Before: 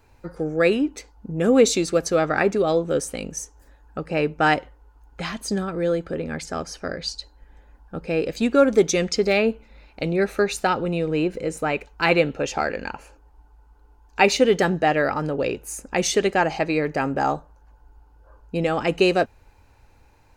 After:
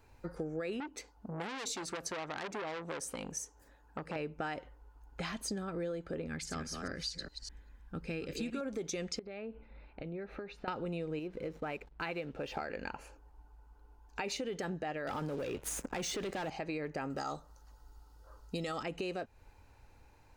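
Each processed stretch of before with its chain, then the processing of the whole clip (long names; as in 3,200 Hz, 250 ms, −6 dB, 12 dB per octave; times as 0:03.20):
0:00.80–0:04.16: high-pass filter 100 Hz 6 dB per octave + saturating transformer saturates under 3,700 Hz
0:06.27–0:08.61: delay that plays each chunk backwards 203 ms, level −6 dB + parametric band 630 Hz −10 dB 1.3 octaves
0:09.19–0:10.68: downward compressor 10 to 1, threshold −32 dBFS + high-frequency loss of the air 340 metres
0:11.19–0:12.57: low-pass filter 4,500 Hz 24 dB per octave + downward compressor 1.5 to 1, threshold −34 dBFS + slack as between gear wheels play −45.5 dBFS
0:15.07–0:16.50: running median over 3 samples + leveller curve on the samples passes 3 + multiband upward and downward compressor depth 40%
0:17.10–0:18.83: high shelf with overshoot 3,000 Hz +11.5 dB, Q 1.5 + floating-point word with a short mantissa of 6 bits + hollow resonant body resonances 1,300/1,900 Hz, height 14 dB, ringing for 35 ms
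whole clip: brickwall limiter −14 dBFS; downward compressor, threshold −30 dBFS; level −5.5 dB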